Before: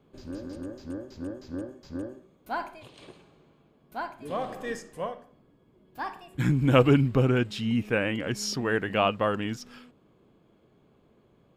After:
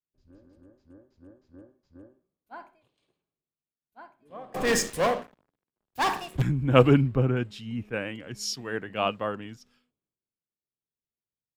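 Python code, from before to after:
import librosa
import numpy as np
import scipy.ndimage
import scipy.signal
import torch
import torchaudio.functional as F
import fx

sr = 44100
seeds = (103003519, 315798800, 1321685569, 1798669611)

y = fx.leveller(x, sr, passes=5, at=(4.54, 6.42))
y = fx.band_widen(y, sr, depth_pct=100)
y = y * librosa.db_to_amplitude(-6.5)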